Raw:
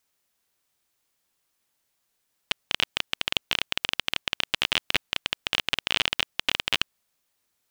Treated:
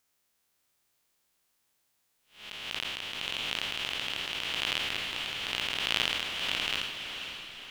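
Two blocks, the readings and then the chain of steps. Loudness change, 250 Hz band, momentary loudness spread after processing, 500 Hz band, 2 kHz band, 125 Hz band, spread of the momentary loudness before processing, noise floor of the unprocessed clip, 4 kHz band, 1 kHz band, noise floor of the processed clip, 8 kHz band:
-4.5 dB, -4.5 dB, 9 LU, -4.0 dB, -4.5 dB, -4.5 dB, 5 LU, -76 dBFS, -4.0 dB, -4.0 dB, -76 dBFS, -4.0 dB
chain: spectral blur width 204 ms; echo that smears into a reverb 514 ms, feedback 49%, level -7.5 dB; trim +1.5 dB

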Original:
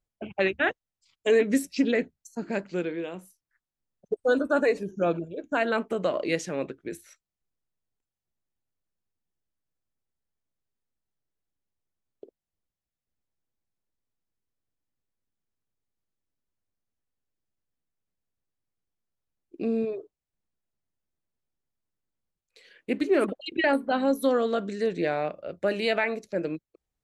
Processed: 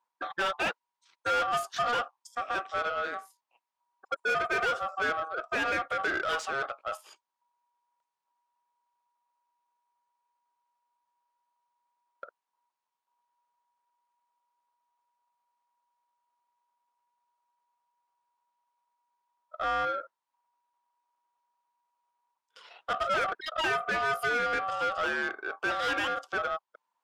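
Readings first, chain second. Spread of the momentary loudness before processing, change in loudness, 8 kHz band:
12 LU, -3.0 dB, -2.0 dB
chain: ring modulator 960 Hz; overdrive pedal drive 23 dB, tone 2.9 kHz, clips at -11.5 dBFS; trim -8.5 dB

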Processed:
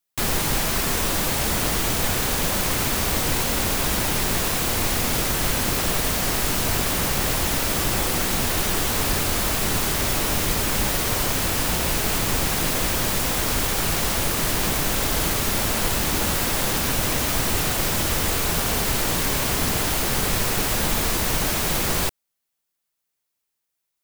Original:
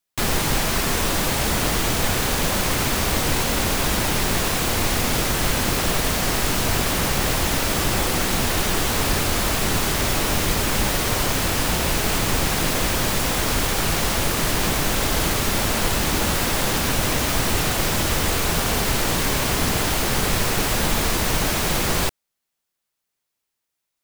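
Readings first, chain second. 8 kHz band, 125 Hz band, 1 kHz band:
0.0 dB, -2.5 dB, -2.5 dB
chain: treble shelf 9 kHz +5.5 dB; trim -2.5 dB

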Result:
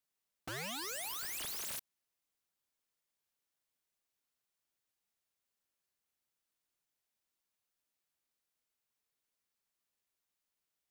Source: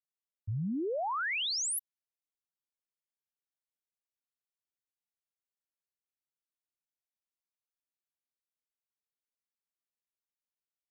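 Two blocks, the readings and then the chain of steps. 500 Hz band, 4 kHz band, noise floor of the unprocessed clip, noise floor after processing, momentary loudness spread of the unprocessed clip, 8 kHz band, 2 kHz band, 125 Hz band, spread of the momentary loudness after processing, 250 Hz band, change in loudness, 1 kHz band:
-13.0 dB, -8.0 dB, under -85 dBFS, under -85 dBFS, 8 LU, -6.5 dB, -9.0 dB, -16.5 dB, 7 LU, -15.5 dB, -7.0 dB, -11.5 dB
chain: integer overflow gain 43.5 dB; trim +7 dB

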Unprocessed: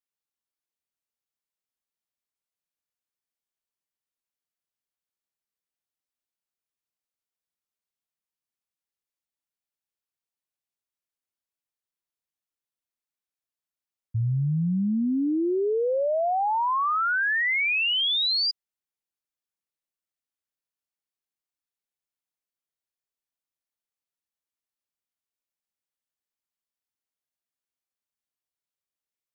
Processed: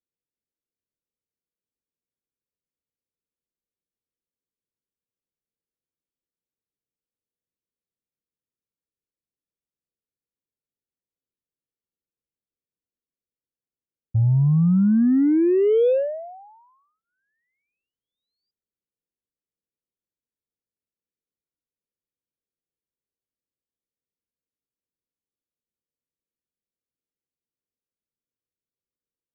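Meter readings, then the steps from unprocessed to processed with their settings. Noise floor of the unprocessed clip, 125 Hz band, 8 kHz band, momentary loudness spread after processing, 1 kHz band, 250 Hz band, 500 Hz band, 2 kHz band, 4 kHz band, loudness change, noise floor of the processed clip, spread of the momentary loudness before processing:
under -85 dBFS, +7.0 dB, no reading, 9 LU, -20.5 dB, +7.0 dB, +5.0 dB, under -20 dB, under -30 dB, +4.5 dB, under -85 dBFS, 5 LU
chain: elliptic low-pass 510 Hz, stop band 60 dB; Chebyshev shaper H 7 -33 dB, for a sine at -21 dBFS; trim +7.5 dB

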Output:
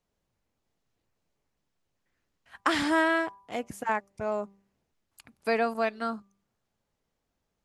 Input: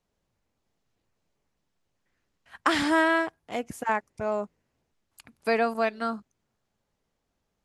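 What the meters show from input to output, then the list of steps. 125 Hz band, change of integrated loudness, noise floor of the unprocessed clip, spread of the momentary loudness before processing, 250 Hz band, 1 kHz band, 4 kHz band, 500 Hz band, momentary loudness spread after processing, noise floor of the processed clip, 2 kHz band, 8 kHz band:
-2.0 dB, -2.0 dB, -80 dBFS, 13 LU, -2.0 dB, -2.0 dB, -2.0 dB, -2.0 dB, 13 LU, -82 dBFS, -2.0 dB, -2.0 dB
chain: de-hum 197.5 Hz, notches 6; trim -2 dB

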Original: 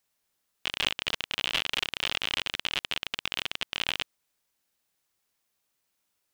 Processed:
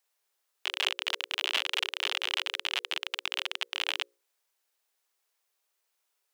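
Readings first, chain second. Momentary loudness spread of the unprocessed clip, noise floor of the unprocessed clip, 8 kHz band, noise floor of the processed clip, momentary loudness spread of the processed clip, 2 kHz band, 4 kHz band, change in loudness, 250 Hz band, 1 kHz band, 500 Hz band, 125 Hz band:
5 LU, -79 dBFS, -1.0 dB, -79 dBFS, 5 LU, -0.5 dB, -1.0 dB, -1.0 dB, under -10 dB, 0.0 dB, -1.0 dB, under -40 dB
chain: elliptic high-pass 380 Hz, stop band 60 dB; hum notches 60/120/180/240/300/360/420/480/540 Hz

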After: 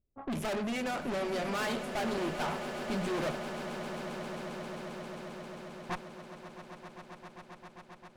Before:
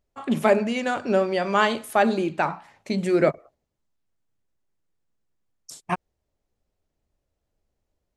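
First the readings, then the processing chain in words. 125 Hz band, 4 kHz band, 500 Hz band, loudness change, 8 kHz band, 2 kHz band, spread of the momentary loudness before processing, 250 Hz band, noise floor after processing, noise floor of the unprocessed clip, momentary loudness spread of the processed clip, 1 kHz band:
-7.5 dB, -5.5 dB, -11.5 dB, -12.5 dB, -4.0 dB, -9.5 dB, 11 LU, -9.5 dB, -57 dBFS, -80 dBFS, 16 LU, -11.0 dB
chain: level-controlled noise filter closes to 350 Hz, open at -20.5 dBFS; valve stage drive 32 dB, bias 0.6; echo with a slow build-up 133 ms, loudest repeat 8, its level -14 dB

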